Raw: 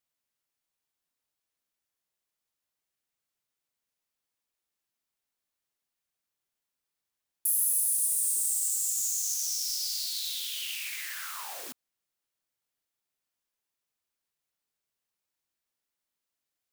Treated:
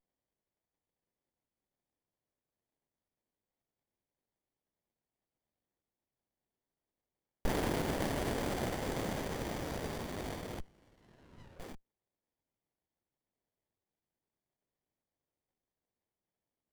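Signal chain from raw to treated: chorus 0.29 Hz, delay 19.5 ms, depth 7.9 ms; 10.6–11.6 double band-pass 740 Hz, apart 0.8 oct; running maximum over 33 samples; gain +2 dB

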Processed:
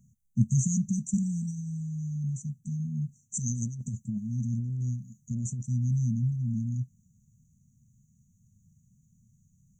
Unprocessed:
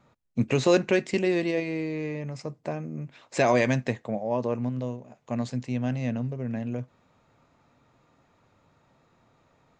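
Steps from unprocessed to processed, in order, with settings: brick-wall FIR band-stop 230–5800 Hz; high shelf 4200 Hz +4 dB; 3.37–5.62 negative-ratio compressor -36 dBFS, ratio -1; gain +5 dB

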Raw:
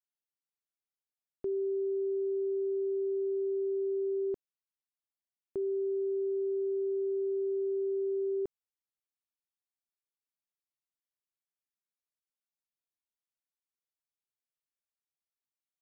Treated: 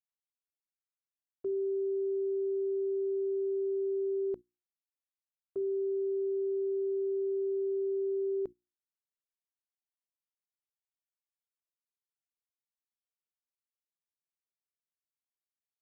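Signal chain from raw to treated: notches 60/120/180/240/300/360 Hz; gate -41 dBFS, range -14 dB

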